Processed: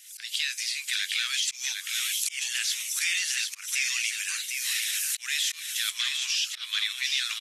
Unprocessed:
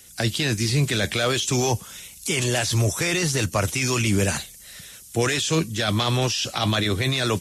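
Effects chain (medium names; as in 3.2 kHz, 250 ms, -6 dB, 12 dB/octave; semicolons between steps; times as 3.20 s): recorder AGC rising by 58 dB/s; treble shelf 4.3 kHz -5 dB; delay 754 ms -5 dB; slow attack 157 ms; inverse Chebyshev high-pass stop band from 570 Hz, stop band 60 dB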